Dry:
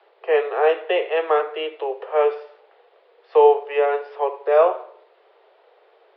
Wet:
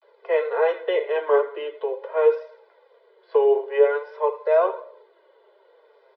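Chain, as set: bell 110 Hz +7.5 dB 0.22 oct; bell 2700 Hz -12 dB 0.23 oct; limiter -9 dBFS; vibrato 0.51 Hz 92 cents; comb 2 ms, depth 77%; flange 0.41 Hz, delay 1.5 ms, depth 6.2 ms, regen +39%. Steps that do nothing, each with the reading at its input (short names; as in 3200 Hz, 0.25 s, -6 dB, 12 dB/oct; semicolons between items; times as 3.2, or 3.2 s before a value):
bell 110 Hz: input band starts at 380 Hz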